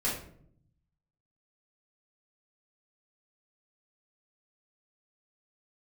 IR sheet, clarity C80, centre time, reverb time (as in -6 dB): 8.5 dB, 40 ms, 0.65 s